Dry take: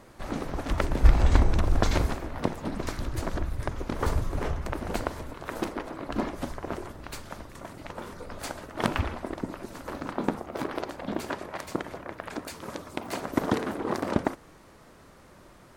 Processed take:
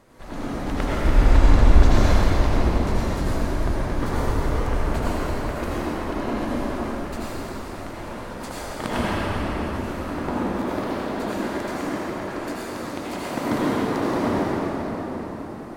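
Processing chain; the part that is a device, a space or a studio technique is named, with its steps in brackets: cathedral (reverberation RT60 5.1 s, pre-delay 72 ms, DRR -9.5 dB); trim -4 dB

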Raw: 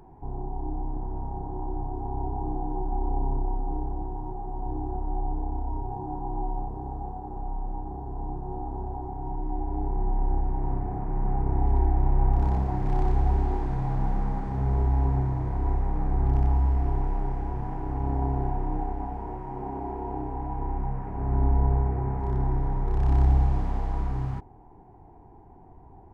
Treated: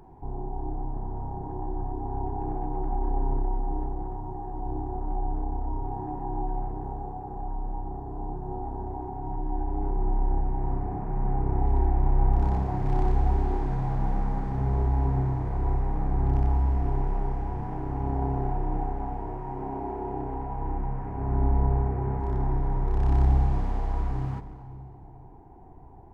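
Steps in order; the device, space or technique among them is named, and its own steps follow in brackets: saturated reverb return (on a send at -9 dB: reverberation RT60 2.4 s, pre-delay 31 ms + saturation -26.5 dBFS, distortion -7 dB)

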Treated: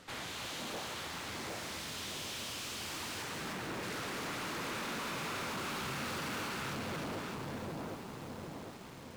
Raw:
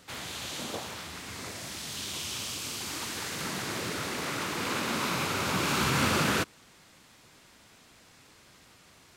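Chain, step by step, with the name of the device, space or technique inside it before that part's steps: 3.22–3.83 s: distance through air 450 m; two-band feedback delay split 900 Hz, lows 757 ms, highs 305 ms, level -5.5 dB; tube preamp driven hard (valve stage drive 41 dB, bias 0.6; bass shelf 180 Hz -4 dB; treble shelf 4.7 kHz -8 dB); bit-crushed delay 296 ms, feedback 80%, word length 9-bit, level -10.5 dB; trim +4.5 dB

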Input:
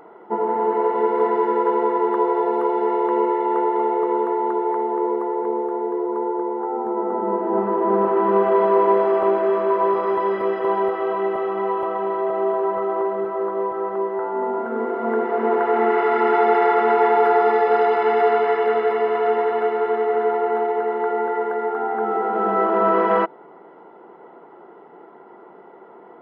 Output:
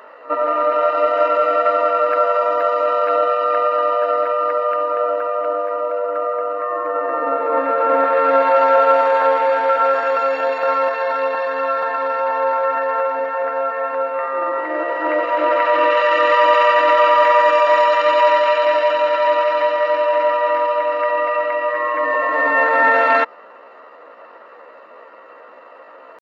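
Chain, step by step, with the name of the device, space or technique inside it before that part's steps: high-pass 250 Hz 6 dB/octave; treble shelf 2.4 kHz +3.5 dB; pre-echo 63 ms -20 dB; chipmunk voice (pitch shift +5.5 st); trim +4 dB

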